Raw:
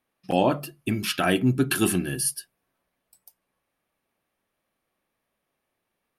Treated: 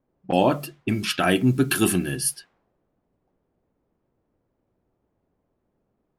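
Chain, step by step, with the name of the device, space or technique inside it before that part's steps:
cassette deck with a dynamic noise filter (white noise bed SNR 30 dB; low-pass that shuts in the quiet parts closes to 390 Hz, open at −22.5 dBFS)
level +2 dB

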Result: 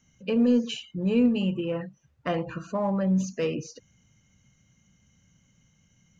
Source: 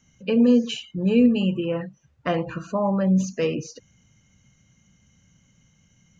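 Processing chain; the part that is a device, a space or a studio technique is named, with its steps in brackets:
parallel distortion (in parallel at −12 dB: hard clipping −20.5 dBFS, distortion −8 dB)
on the sum: level −5.5 dB

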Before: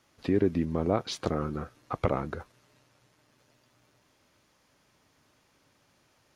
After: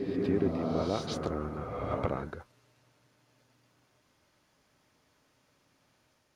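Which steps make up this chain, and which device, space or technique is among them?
reverse reverb (reversed playback; convolution reverb RT60 1.9 s, pre-delay 99 ms, DRR 0 dB; reversed playback)
level −5.5 dB

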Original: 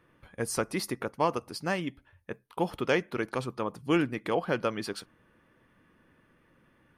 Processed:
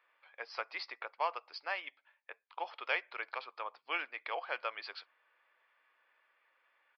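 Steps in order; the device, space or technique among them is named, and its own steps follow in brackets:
musical greeting card (downsampling to 11,025 Hz; high-pass filter 670 Hz 24 dB per octave; parametric band 2,300 Hz +6.5 dB 0.27 octaves)
level −5 dB

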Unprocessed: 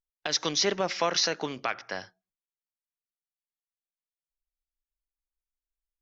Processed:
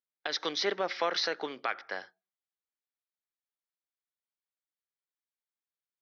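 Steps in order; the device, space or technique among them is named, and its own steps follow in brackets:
phone earpiece (loudspeaker in its box 390–4,100 Hz, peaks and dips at 640 Hz −4 dB, 1,000 Hz −4 dB, 2,700 Hz −8 dB)

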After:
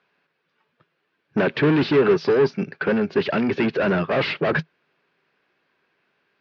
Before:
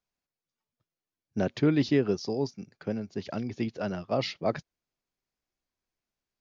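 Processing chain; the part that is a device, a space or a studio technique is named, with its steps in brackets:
overdrive pedal into a guitar cabinet (mid-hump overdrive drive 33 dB, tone 1,400 Hz, clips at −13 dBFS; loudspeaker in its box 85–4,300 Hz, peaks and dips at 160 Hz +8 dB, 410 Hz +6 dB, 720 Hz −4 dB, 1,600 Hz +7 dB, 2,600 Hz +5 dB)

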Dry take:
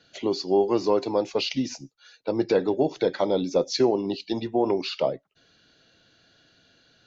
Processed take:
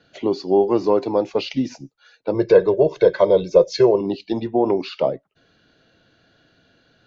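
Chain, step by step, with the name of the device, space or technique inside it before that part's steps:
through cloth (high-shelf EQ 3,300 Hz −13.5 dB)
0:02.34–0:04.01: comb filter 1.9 ms, depth 95%
level +5 dB

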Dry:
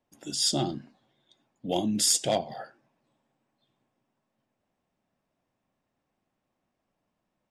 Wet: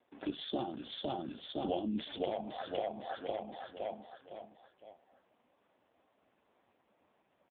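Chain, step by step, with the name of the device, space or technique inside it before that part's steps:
repeating echo 510 ms, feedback 38%, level −5 dB
0:00.62–0:01.74: dynamic equaliser 340 Hz, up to −6 dB, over −41 dBFS, Q 0.93
voicemail (band-pass filter 300–2,900 Hz; downward compressor 10 to 1, threshold −43 dBFS, peak gain reduction 21 dB; level +12 dB; AMR narrowband 5.15 kbit/s 8,000 Hz)

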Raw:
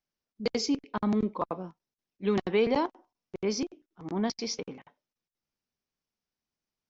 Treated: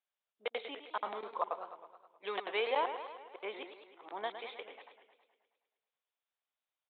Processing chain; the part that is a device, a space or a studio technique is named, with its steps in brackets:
dynamic equaliser 150 Hz, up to +7 dB, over −45 dBFS, Q 1.7
musical greeting card (downsampling to 8,000 Hz; high-pass filter 560 Hz 24 dB per octave; parametric band 3,700 Hz +5 dB 0.4 octaves)
feedback echo with a swinging delay time 106 ms, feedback 62%, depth 151 cents, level −10 dB
level −2 dB

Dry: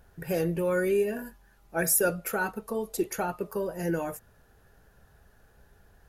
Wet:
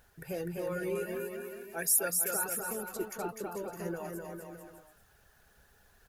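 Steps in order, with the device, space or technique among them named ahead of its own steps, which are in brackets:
reverb reduction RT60 0.69 s
0:00.95–0:02.35: spectral tilt +2 dB per octave
noise-reduction cassette on a plain deck (one half of a high-frequency compander encoder only; tape wow and flutter 27 cents; white noise bed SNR 38 dB)
bouncing-ball delay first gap 250 ms, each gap 0.8×, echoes 5
level −8.5 dB

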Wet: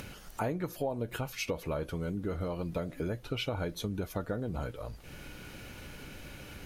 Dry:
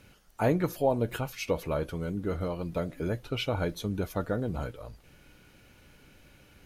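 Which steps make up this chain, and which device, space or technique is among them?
upward and downward compression (upward compression, threshold −39 dBFS; downward compressor 4 to 1, threshold −34 dBFS, peak gain reduction 12 dB)
level +2.5 dB

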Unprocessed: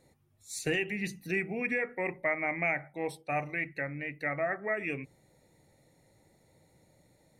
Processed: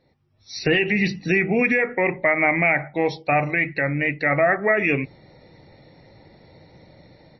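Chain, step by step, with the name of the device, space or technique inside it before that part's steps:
low-bitrate web radio (automatic gain control gain up to 15 dB; brickwall limiter −10 dBFS, peak gain reduction 5 dB; level +1 dB; MP3 24 kbit/s 22,050 Hz)

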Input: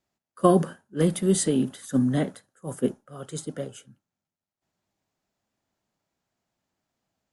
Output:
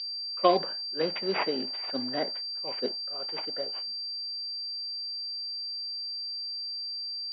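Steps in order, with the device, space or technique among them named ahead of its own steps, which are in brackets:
toy sound module (linearly interpolated sample-rate reduction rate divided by 6×; switching amplifier with a slow clock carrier 4,700 Hz; loudspeaker in its box 720–3,700 Hz, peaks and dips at 1,200 Hz −8 dB, 1,600 Hz −3 dB, 3,200 Hz +4 dB)
level +5 dB

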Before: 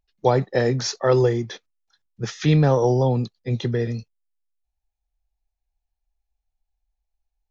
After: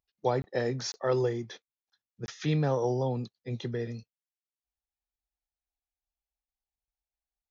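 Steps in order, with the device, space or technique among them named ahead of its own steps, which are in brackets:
call with lost packets (high-pass filter 110 Hz 6 dB per octave; downsampling to 16,000 Hz; dropped packets)
level −9 dB

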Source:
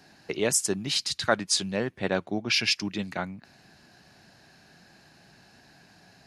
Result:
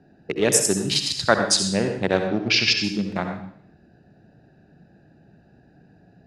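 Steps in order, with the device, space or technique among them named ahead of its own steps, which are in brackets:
adaptive Wiener filter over 41 samples
bathroom (convolution reverb RT60 0.60 s, pre-delay 59 ms, DRR 5 dB)
0:02.28–0:02.84: low-pass filter 6,000 Hz 24 dB per octave
level +6 dB

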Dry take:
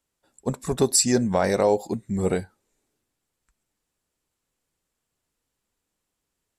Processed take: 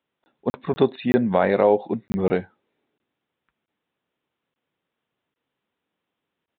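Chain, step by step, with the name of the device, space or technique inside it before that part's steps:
call with lost packets (high-pass filter 150 Hz 12 dB per octave; downsampling to 8,000 Hz; dropped packets)
level +3 dB

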